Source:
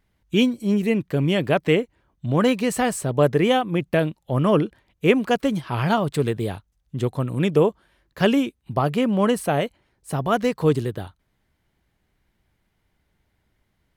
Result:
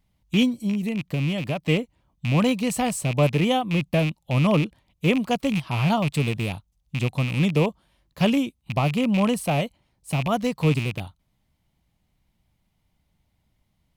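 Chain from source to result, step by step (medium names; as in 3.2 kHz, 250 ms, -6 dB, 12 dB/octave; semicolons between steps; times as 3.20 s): rattle on loud lows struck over -27 dBFS, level -17 dBFS; 0.61–1.69 s: compression, threshold -21 dBFS, peak gain reduction 7 dB; fifteen-band graphic EQ 160 Hz +3 dB, 400 Hz -9 dB, 1.6 kHz -11 dB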